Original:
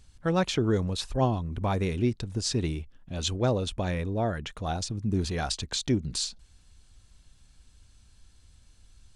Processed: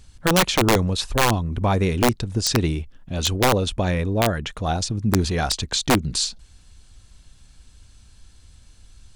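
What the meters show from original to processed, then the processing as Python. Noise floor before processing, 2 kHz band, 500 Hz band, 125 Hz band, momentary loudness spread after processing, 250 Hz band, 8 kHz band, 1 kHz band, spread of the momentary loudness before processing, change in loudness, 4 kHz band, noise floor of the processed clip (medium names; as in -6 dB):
-59 dBFS, +12.5 dB, +6.5 dB, +6.0 dB, 6 LU, +6.0 dB, +9.5 dB, +10.0 dB, 6 LU, +7.5 dB, +9.0 dB, -51 dBFS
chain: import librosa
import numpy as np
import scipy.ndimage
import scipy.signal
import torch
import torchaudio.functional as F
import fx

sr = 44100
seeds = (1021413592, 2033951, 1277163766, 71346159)

y = (np.mod(10.0 ** (17.5 / 20.0) * x + 1.0, 2.0) - 1.0) / 10.0 ** (17.5 / 20.0)
y = y * librosa.db_to_amplitude(7.5)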